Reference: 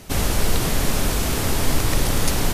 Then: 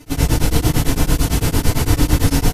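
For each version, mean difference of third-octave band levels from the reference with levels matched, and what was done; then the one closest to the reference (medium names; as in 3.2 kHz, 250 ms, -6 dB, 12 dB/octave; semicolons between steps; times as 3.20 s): 5.0 dB: bass shelf 210 Hz +6.5 dB; FDN reverb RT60 0.65 s, low-frequency decay 1.25×, high-frequency decay 0.95×, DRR -9.5 dB; tremolo of two beating tones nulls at 8.9 Hz; trim -6 dB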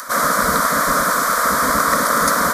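7.5 dB: spectral gate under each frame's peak -15 dB weak; peaking EQ 1.2 kHz +14.5 dB 1.3 oct; upward compressor, threshold -29 dBFS; static phaser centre 550 Hz, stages 8; trim +5.5 dB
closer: first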